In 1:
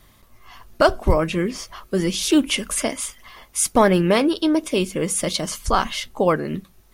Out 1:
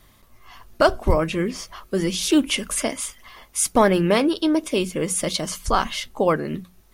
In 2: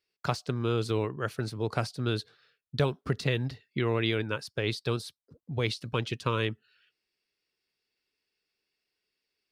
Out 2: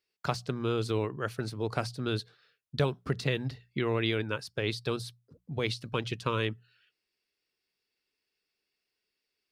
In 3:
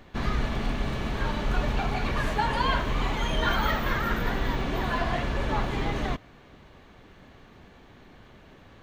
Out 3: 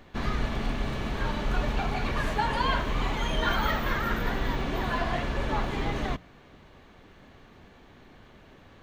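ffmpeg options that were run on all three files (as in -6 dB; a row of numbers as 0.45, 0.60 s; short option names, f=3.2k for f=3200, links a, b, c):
-af "bandreject=f=60:t=h:w=6,bandreject=f=120:t=h:w=6,bandreject=f=180:t=h:w=6,volume=-1dB"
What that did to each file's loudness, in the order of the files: -1.0, -1.5, -1.0 LU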